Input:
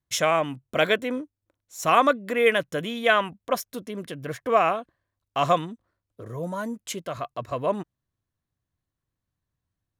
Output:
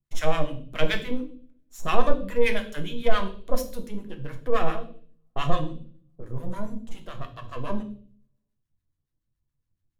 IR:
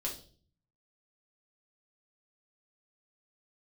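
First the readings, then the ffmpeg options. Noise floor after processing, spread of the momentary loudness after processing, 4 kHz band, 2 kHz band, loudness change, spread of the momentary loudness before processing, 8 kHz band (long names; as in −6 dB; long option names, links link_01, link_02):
−81 dBFS, 15 LU, −5.0 dB, −7.0 dB, −5.5 dB, 14 LU, −9.5 dB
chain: -filter_complex "[0:a]aeval=exprs='if(lt(val(0),0),0.447*val(0),val(0))':channel_layout=same,acrossover=split=970[link_01][link_02];[link_01]aeval=exprs='val(0)*(1-1/2+1/2*cos(2*PI*7.1*n/s))':channel_layout=same[link_03];[link_02]aeval=exprs='val(0)*(1-1/2-1/2*cos(2*PI*7.1*n/s))':channel_layout=same[link_04];[link_03][link_04]amix=inputs=2:normalize=0,asplit=2[link_05][link_06];[1:a]atrim=start_sample=2205,asetrate=37926,aresample=44100,lowshelf=frequency=310:gain=11.5[link_07];[link_06][link_07]afir=irnorm=-1:irlink=0,volume=-1.5dB[link_08];[link_05][link_08]amix=inputs=2:normalize=0,volume=-5dB"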